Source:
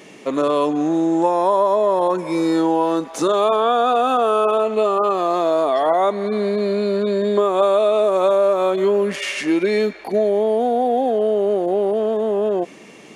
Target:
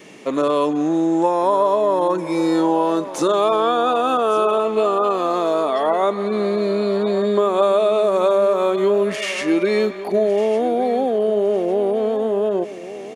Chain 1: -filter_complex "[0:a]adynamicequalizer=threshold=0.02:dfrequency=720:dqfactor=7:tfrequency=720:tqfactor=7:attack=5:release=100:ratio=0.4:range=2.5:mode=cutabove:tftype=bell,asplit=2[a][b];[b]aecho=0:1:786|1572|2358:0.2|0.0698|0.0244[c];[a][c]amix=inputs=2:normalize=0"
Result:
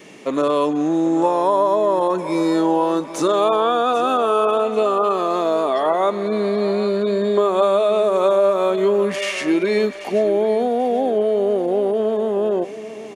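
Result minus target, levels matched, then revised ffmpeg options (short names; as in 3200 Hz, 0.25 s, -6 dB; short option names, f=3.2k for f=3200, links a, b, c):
echo 0.368 s early
-filter_complex "[0:a]adynamicequalizer=threshold=0.02:dfrequency=720:dqfactor=7:tfrequency=720:tqfactor=7:attack=5:release=100:ratio=0.4:range=2.5:mode=cutabove:tftype=bell,asplit=2[a][b];[b]aecho=0:1:1154|2308|3462:0.2|0.0698|0.0244[c];[a][c]amix=inputs=2:normalize=0"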